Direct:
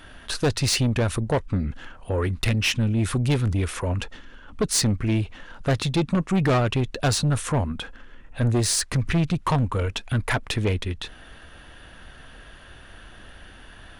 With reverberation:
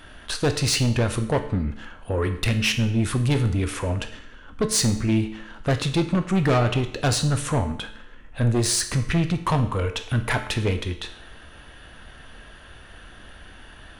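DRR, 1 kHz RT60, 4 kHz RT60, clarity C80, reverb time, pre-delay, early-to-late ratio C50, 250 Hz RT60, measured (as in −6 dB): 7.0 dB, 0.70 s, 0.65 s, 13.5 dB, 0.70 s, 15 ms, 11.0 dB, 0.70 s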